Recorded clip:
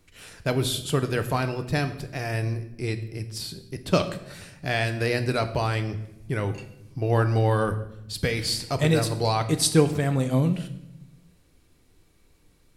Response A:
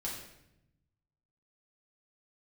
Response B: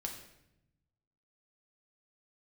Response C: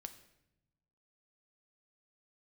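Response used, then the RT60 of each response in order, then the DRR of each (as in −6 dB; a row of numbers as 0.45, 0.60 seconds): C; 0.85, 0.85, 0.85 seconds; −5.5, 1.0, 8.0 decibels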